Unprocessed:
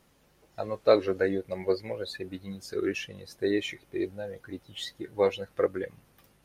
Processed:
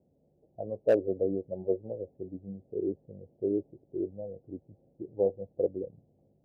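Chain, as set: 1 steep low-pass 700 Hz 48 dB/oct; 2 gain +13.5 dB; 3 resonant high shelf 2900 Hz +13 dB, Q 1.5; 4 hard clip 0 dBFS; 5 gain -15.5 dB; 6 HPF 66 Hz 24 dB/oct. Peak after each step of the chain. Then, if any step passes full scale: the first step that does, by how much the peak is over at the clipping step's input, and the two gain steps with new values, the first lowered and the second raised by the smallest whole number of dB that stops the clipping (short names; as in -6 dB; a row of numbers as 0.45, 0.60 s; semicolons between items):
-9.5, +4.0, +3.5, 0.0, -15.5, -13.5 dBFS; step 2, 3.5 dB; step 2 +9.5 dB, step 5 -11.5 dB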